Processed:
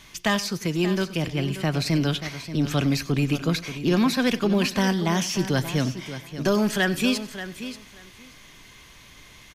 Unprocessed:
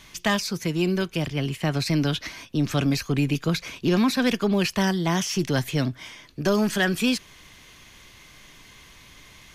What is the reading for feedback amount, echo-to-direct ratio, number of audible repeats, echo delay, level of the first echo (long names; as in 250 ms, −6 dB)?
repeats not evenly spaced, −11.0 dB, 5, 94 ms, −18.0 dB